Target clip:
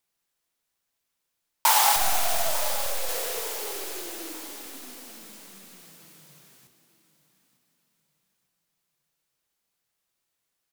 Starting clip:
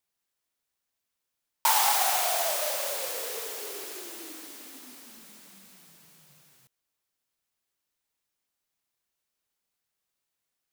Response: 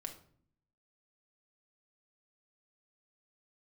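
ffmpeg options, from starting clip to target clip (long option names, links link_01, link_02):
-filter_complex "[0:a]asettb=1/sr,asplit=3[link_01][link_02][link_03];[link_01]atrim=end=1.964[link_04];[link_02]atrim=start=1.96:end=3.09,asetpts=PTS-STARTPTS,afade=type=in:duration=0.004:curve=qsin,afade=type=out:start_time=1.126:duration=0.004:curve=qsin,aeval=exprs='if(lt(val(0),0),0.251*val(0),val(0))':channel_layout=same[link_05];[link_03]atrim=start=3.086[link_06];[link_04][link_05]acrossfade=duration=0.004:curve1=hsin:curve2=qsin[link_07];[link_07][link_06]acrossfade=duration=0.004:curve1=qsin:curve2=hsin,aecho=1:1:898|1796|2694:0.168|0.0655|0.0255,asplit=2[link_08][link_09];[1:a]atrim=start_sample=2205,asetrate=33957,aresample=44100[link_10];[link_09][link_10]afir=irnorm=-1:irlink=0,volume=-3dB[link_11];[link_08][link_11]amix=inputs=2:normalize=0"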